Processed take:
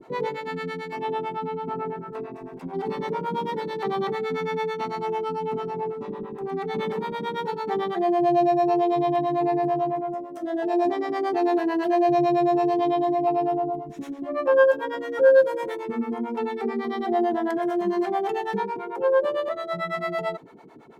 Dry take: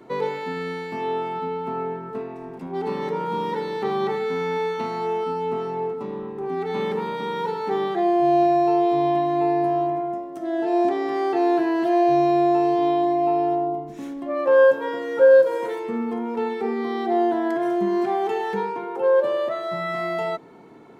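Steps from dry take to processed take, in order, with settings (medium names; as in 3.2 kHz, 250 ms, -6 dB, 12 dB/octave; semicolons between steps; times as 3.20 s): harmonic tremolo 9 Hz, depth 100%, crossover 470 Hz; trim +3 dB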